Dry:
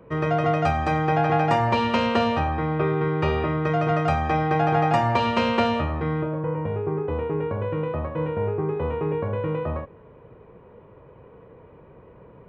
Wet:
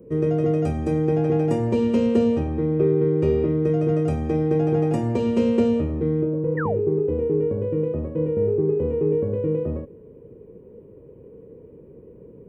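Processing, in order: EQ curve 130 Hz 0 dB, 240 Hz +6 dB, 460 Hz +6 dB, 680 Hz -12 dB, 1200 Hz -18 dB, 2700 Hz -12 dB, 4100 Hz -13 dB, 8800 Hz +6 dB; painted sound fall, 6.57–6.8, 340–2000 Hz -29 dBFS

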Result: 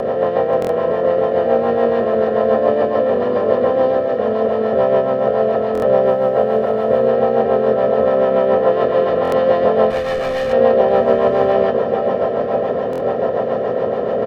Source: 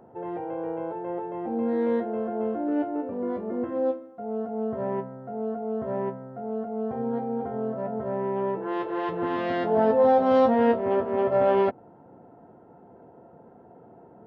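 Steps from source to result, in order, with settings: per-bin compression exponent 0.2; feedback echo 0.533 s, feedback 58%, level -9 dB; 6.06–7.05 requantised 10-bit, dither none; 9.9–10.53 overloaded stage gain 20 dB; echo 1.001 s -15 dB; rotary speaker horn 7 Hz; comb 1.7 ms, depth 65%; stuck buffer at 0.6/5.73/9.23/12.91, samples 1024, times 3; gain +1.5 dB

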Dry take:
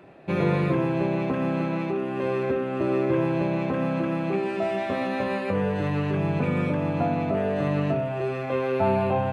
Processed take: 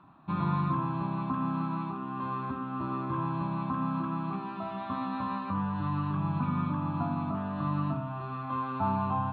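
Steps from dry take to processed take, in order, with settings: EQ curve 280 Hz 0 dB, 460 Hz -25 dB, 1100 Hz +11 dB, 2000 Hz -15 dB, 4000 Hz -2 dB, 5800 Hz -29 dB; gain -4.5 dB

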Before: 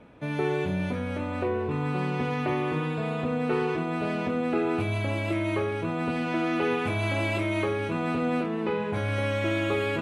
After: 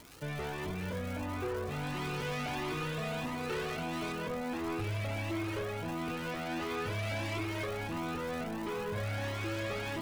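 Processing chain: 1.68–4.12 high shelf 2700 Hz +11 dB; hard clip -29 dBFS, distortion -8 dB; crackle 460/s -35 dBFS; cascading flanger rising 1.5 Hz

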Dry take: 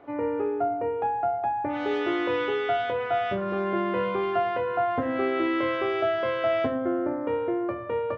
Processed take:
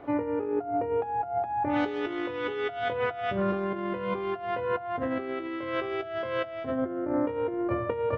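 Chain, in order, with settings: negative-ratio compressor -30 dBFS, ratio -0.5; low shelf 170 Hz +7.5 dB

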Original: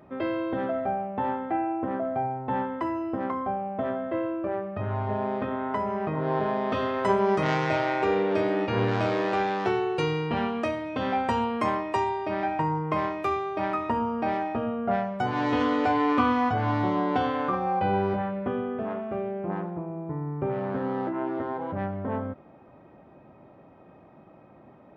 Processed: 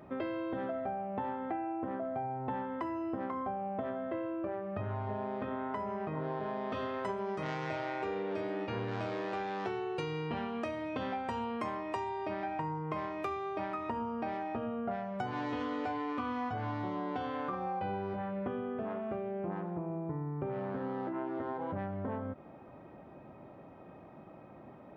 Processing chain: compressor, threshold -34 dBFS, peak gain reduction 15.5 dB

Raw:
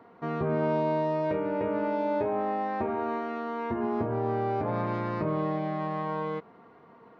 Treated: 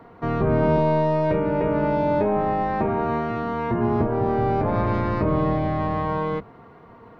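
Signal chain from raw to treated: octaver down 1 oct, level -1 dB; gain +6.5 dB

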